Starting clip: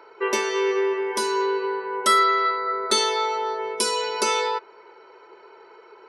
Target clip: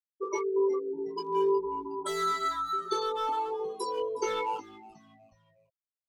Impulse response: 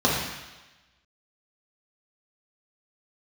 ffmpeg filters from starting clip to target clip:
-filter_complex "[0:a]afftfilt=real='re*gte(hypot(re,im),0.251)':imag='im*gte(hypot(re,im),0.251)':win_size=1024:overlap=0.75,highshelf=f=3600:g=2,acrossover=split=680|2100[s0][s1][s2];[s1]asoftclip=type=hard:threshold=0.0335[s3];[s2]acompressor=threshold=0.0112:ratio=10[s4];[s0][s3][s4]amix=inputs=3:normalize=0,flanger=delay=18.5:depth=3.6:speed=0.48,asplit=2[s5][s6];[s6]asplit=3[s7][s8][s9];[s7]adelay=365,afreqshift=-110,volume=0.112[s10];[s8]adelay=730,afreqshift=-220,volume=0.0437[s11];[s9]adelay=1095,afreqshift=-330,volume=0.017[s12];[s10][s11][s12]amix=inputs=3:normalize=0[s13];[s5][s13]amix=inputs=2:normalize=0"

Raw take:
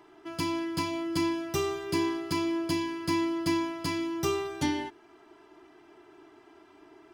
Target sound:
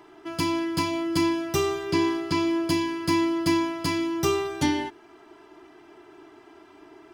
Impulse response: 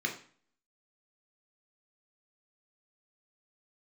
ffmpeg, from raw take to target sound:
-filter_complex "[0:a]asettb=1/sr,asplit=3[s0][s1][s2];[s0]atrim=end=1.834[s3];[s1]atrim=start=1.83:end=2.6,asetpts=PTS-STARTPTS,afade=t=in:d=0.004:c=qsin,afade=t=out:st=0.766:d=0.004:c=qsin,acrossover=split=6600[s4][s5];[s5]acompressor=threshold=0.00158:ratio=4:attack=1:release=60[s6];[s4][s6]amix=inputs=2:normalize=0[s7];[s2]atrim=start=2.596[s8];[s3][s7]acrossfade=d=0.004:c1=hsin:c2=qsin[s9];[s9][s8]acrossfade=d=0.004:c1=qsin:c2=hsin,volume=1.78"

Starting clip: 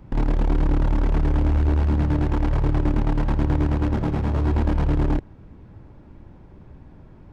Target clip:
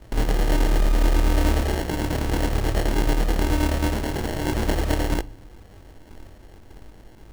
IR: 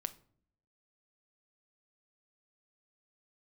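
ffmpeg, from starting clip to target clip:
-filter_complex "[0:a]acrusher=bits=2:mode=log:mix=0:aa=0.000001,equalizer=f=160:w=1.3:g=-14.5,flanger=delay=17.5:depth=6.2:speed=0.4,acrusher=samples=36:mix=1:aa=0.000001,asplit=2[s0][s1];[1:a]atrim=start_sample=2205[s2];[s1][s2]afir=irnorm=-1:irlink=0,volume=0.891[s3];[s0][s3]amix=inputs=2:normalize=0"

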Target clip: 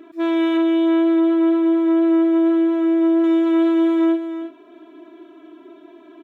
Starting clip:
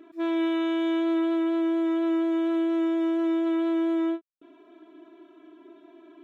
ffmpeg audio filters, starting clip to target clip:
-filter_complex "[0:a]asettb=1/sr,asplit=3[s0][s1][s2];[s0]atrim=end=0.574[s3];[s1]atrim=start=0.57:end=3.24,asetpts=PTS-STARTPTS,afade=t=in:d=0.004:c=qsin,afade=t=out:st=2.666:d=0.004:c=qsin,highshelf=f=2200:g=-9.5[s4];[s2]atrim=start=3.236[s5];[s3][s4]acrossfade=d=0.004:c1=hsin:c2=qsin[s6];[s6][s5]acrossfade=d=0.004:c1=qsin:c2=hsin,aecho=1:1:325:0.355,volume=2.24"

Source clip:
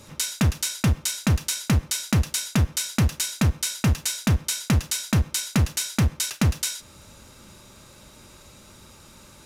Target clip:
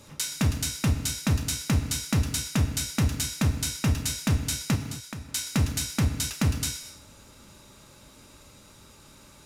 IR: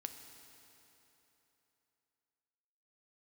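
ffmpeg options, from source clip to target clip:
-filter_complex "[0:a]asettb=1/sr,asplit=3[s0][s1][s2];[s0]atrim=end=4.754[s3];[s1]atrim=start=4.75:end=5.29,asetpts=PTS-STARTPTS,afade=t=in:d=0.004:c=qsin,afade=t=out:st=0.536:d=0.004:c=qsin,acompressor=threshold=0.0251:ratio=12[s4];[s2]atrim=start=5.286[s5];[s3][s4]acrossfade=d=0.004:c1=hsin:c2=qsin[s6];[s6][s5]acrossfade=d=0.004:c1=qsin:c2=hsin[s7];[1:a]atrim=start_sample=2205,afade=t=out:st=0.3:d=0.01,atrim=end_sample=13671[s8];[s7][s8]afir=irnorm=-1:irlink=0"

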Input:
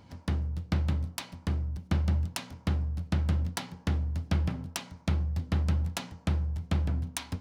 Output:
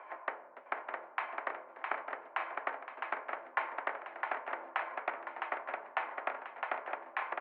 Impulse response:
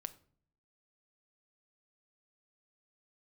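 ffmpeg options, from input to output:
-af "acompressor=threshold=0.0158:ratio=5,aecho=1:1:660|1221|1698|2103|2448:0.631|0.398|0.251|0.158|0.1,highpass=f=510:t=q:w=0.5412,highpass=f=510:t=q:w=1.307,lowpass=f=2100:t=q:w=0.5176,lowpass=f=2100:t=q:w=0.7071,lowpass=f=2100:t=q:w=1.932,afreqshift=83,volume=4.22"

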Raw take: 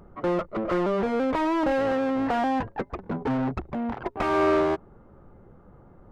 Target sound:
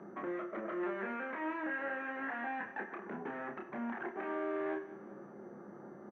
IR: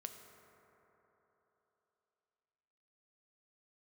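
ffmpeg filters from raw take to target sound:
-filter_complex "[0:a]asettb=1/sr,asplit=3[s0][s1][s2];[s0]atrim=end=0.834[s3];[s1]atrim=start=0.83:end=3.1,asetpts=PTS-STARTPTS,afade=t=in:d=0.004:c=qsin,afade=t=out:st=2.266:d=0.004:c=qsin,equalizer=f=1900:w=0.44:g=14[s4];[s2]atrim=start=3.096[s5];[s3][s4]acrossfade=d=0.004:c1=hsin:c2=qsin[s6];[s6][s5]acrossfade=d=0.004:c1=qsin:c2=hsin,acompressor=threshold=0.0251:ratio=4,alimiter=level_in=1.58:limit=0.0631:level=0:latency=1:release=229,volume=0.631,acrossover=split=530|1100[s7][s8][s9];[s7]acompressor=threshold=0.00501:ratio=4[s10];[s8]acompressor=threshold=0.00282:ratio=4[s11];[s9]acompressor=threshold=0.00501:ratio=4[s12];[s10][s11][s12]amix=inputs=3:normalize=0,asoftclip=type=hard:threshold=0.0126,highpass=f=180:w=0.5412,highpass=f=180:w=1.3066,equalizer=f=220:t=q:w=4:g=5,equalizer=f=350:t=q:w=4:g=8,equalizer=f=720:t=q:w=4:g=4,equalizer=f=1700:t=q:w=4:g=10,lowpass=f=2500:w=0.5412,lowpass=f=2500:w=1.3066,asplit=2[s13][s14];[s14]adelay=29,volume=0.596[s15];[s13][s15]amix=inputs=2:normalize=0,aecho=1:1:186|372|558|744:0.141|0.0664|0.0312|0.0147[s16];[1:a]atrim=start_sample=2205,afade=t=out:st=0.15:d=0.01,atrim=end_sample=7056,asetrate=39690,aresample=44100[s17];[s16][s17]afir=irnorm=-1:irlink=0,volume=1.41" -ar 24000 -c:a mp2 -b:a 48k

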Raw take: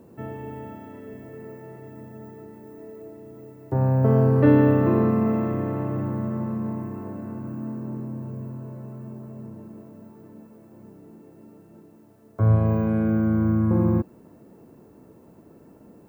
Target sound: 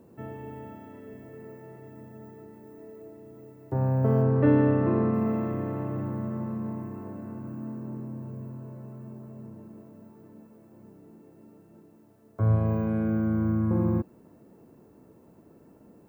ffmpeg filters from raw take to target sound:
-filter_complex "[0:a]asettb=1/sr,asplit=3[s0][s1][s2];[s0]atrim=end=4.224[s3];[s1]atrim=start=4.22:end=5.14,asetpts=PTS-STARTPTS,afade=t=in:d=0.004:c=qsin,afade=t=out:st=0.916:d=0.004:c=qsin,lowpass=3100[s4];[s2]atrim=start=5.136[s5];[s3][s4]acrossfade=d=0.004:c1=hsin:c2=qsin[s6];[s6][s5]acrossfade=d=0.004:c1=qsin:c2=hsin,volume=0.596"

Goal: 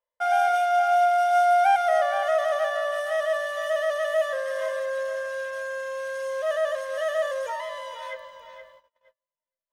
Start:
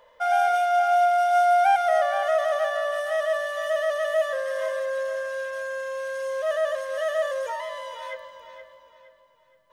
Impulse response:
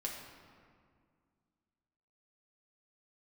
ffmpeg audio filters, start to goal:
-af "equalizer=f=330:t=o:w=0.46:g=-9,agate=range=0.0178:threshold=0.00316:ratio=16:detection=peak"

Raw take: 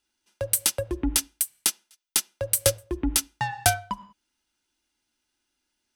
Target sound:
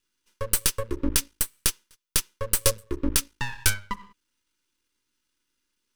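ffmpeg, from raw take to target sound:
-af "aeval=exprs='max(val(0),0)':c=same,asuperstop=centerf=710:order=8:qfactor=2.2,volume=1.58"

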